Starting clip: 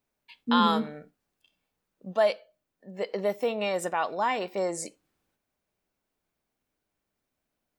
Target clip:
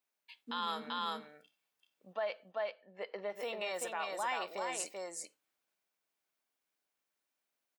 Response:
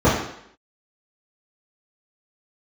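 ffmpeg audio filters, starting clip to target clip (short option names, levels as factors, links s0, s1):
-filter_complex "[0:a]asplit=3[s0][s1][s2];[s0]afade=t=out:st=2.12:d=0.02[s3];[s1]lowpass=2600,afade=t=in:st=2.12:d=0.02,afade=t=out:st=3.35:d=0.02[s4];[s2]afade=t=in:st=3.35:d=0.02[s5];[s3][s4][s5]amix=inputs=3:normalize=0,aecho=1:1:387:0.631,alimiter=limit=0.106:level=0:latency=1:release=61,highpass=f=1200:p=1,volume=0.708"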